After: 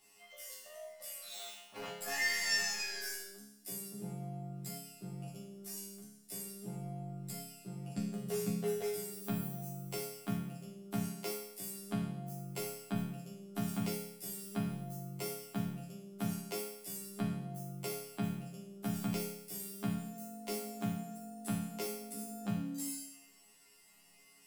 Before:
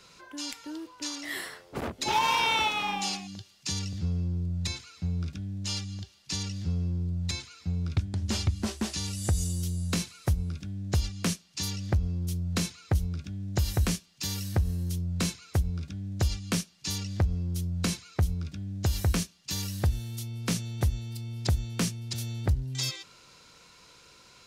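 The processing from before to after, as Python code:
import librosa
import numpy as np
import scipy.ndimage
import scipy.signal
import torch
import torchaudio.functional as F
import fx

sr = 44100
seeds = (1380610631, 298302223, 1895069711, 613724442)

y = fx.pitch_heads(x, sr, semitones=12.0)
y = fx.resonator_bank(y, sr, root=49, chord='major', decay_s=0.8)
y = y * 10.0 ** (12.0 / 20.0)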